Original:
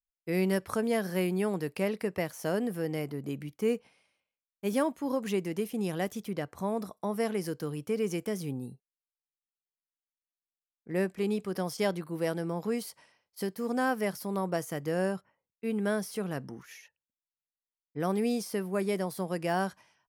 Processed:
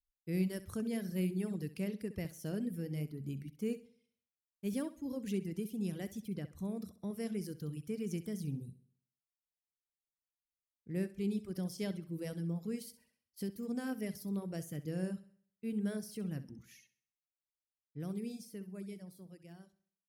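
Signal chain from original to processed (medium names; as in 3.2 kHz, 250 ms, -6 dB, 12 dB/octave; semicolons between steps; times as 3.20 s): fade out at the end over 3.22 s; amplifier tone stack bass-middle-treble 10-0-1; flutter echo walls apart 11.2 m, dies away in 0.56 s; reverb removal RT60 0.72 s; trim +13 dB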